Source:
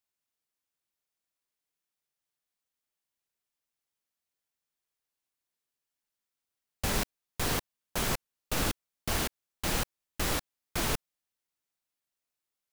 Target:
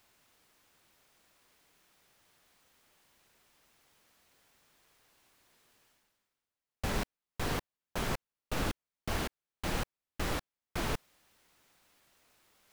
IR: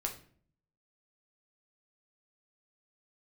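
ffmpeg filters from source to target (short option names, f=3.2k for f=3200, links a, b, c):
-af "highshelf=f=4.3k:g=-10,areverse,acompressor=mode=upward:threshold=-44dB:ratio=2.5,areverse,volume=-2dB"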